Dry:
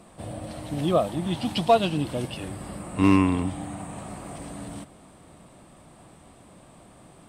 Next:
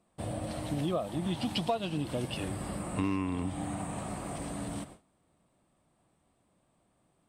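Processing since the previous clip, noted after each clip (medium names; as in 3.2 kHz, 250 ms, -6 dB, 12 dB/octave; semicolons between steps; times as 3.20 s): gate with hold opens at -38 dBFS; compression 5:1, threshold -29 dBFS, peak gain reduction 14.5 dB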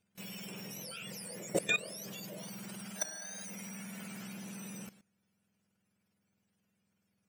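spectrum inverted on a logarithmic axis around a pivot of 1.3 kHz; level held to a coarse grid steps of 17 dB; trim +6 dB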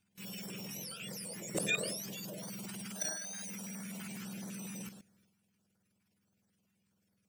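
transient shaper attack -4 dB, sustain +8 dB; step-sequenced notch 12 Hz 520–2700 Hz; trim +1.5 dB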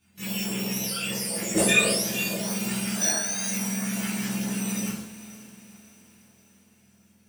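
echo that smears into a reverb 490 ms, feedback 51%, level -15 dB; reverberation, pre-delay 6 ms, DRR -9.5 dB; trim +5.5 dB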